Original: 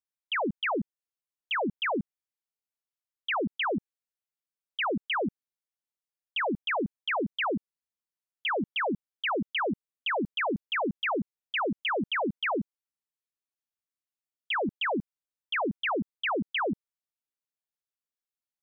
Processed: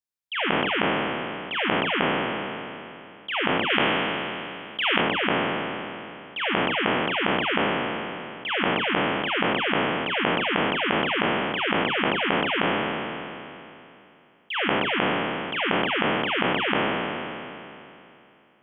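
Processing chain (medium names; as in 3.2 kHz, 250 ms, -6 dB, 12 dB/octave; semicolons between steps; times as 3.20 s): spectral sustain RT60 2.79 s; 3.70–5.01 s: treble shelf 3 kHz +10 dB; trim -3 dB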